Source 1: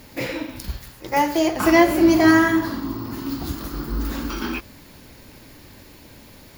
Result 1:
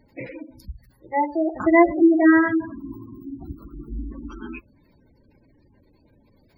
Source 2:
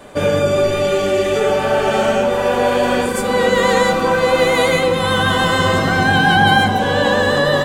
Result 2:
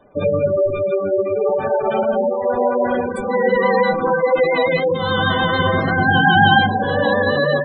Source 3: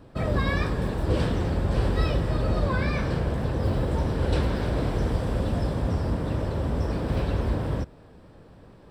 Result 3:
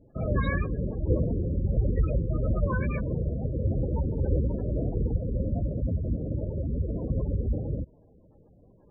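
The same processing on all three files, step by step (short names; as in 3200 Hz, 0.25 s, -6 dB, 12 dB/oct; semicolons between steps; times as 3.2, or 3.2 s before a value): spectral gate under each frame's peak -15 dB strong; upward expander 1.5:1, over -35 dBFS; gain +1 dB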